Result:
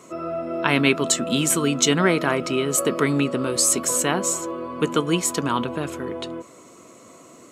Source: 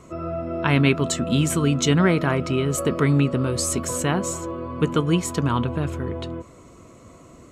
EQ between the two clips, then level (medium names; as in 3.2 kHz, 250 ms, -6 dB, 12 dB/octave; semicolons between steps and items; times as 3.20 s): high-pass 240 Hz 12 dB/octave; treble shelf 4.5 kHz +7 dB; +1.5 dB